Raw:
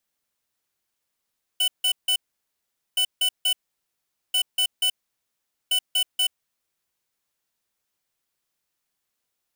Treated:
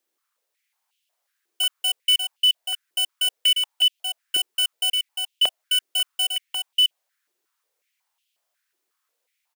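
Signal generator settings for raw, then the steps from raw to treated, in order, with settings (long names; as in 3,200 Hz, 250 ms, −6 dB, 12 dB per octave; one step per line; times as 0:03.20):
beeps in groups square 2,990 Hz, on 0.08 s, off 0.16 s, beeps 3, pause 0.81 s, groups 4, −21 dBFS
single-tap delay 591 ms −5.5 dB
high-pass on a step sequencer 5.5 Hz 360–2,900 Hz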